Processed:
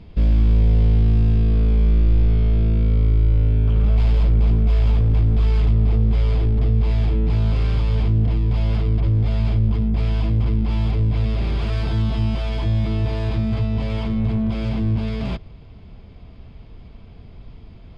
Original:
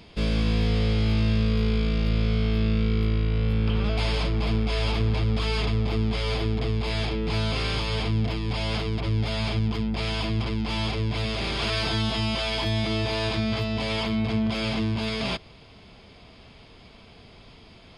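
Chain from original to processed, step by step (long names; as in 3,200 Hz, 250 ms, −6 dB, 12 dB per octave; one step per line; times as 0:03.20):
gain into a clipping stage and back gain 23.5 dB
RIAA equalisation playback
level −3 dB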